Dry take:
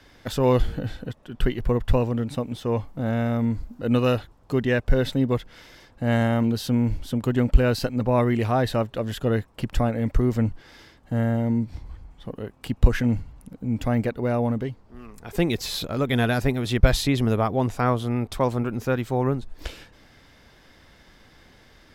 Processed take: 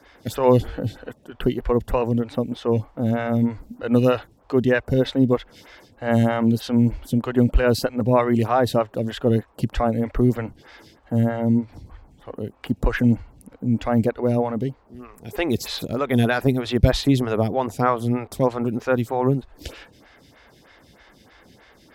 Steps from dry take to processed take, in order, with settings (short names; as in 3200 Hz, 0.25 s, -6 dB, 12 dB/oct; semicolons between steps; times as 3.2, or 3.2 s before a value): HPF 42 Hz; photocell phaser 3.2 Hz; gain +5.5 dB